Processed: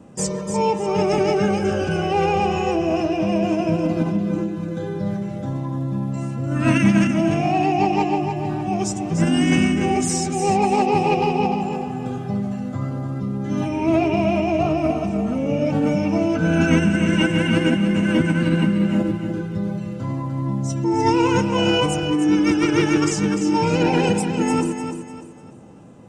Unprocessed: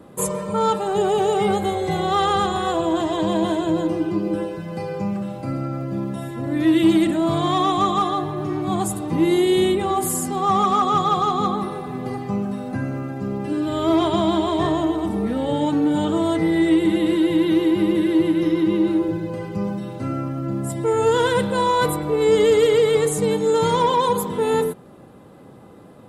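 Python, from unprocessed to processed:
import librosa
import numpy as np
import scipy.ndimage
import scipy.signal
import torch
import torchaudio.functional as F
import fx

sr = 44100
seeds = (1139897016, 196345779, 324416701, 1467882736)

p1 = fx.formant_shift(x, sr, semitones=-5)
y = p1 + fx.echo_feedback(p1, sr, ms=298, feedback_pct=34, wet_db=-8.0, dry=0)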